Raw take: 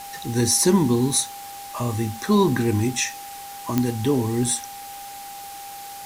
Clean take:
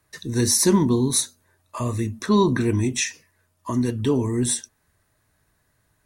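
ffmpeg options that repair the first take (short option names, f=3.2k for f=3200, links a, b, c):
-af "adeclick=t=4,bandreject=f=800:w=30,afwtdn=0.01"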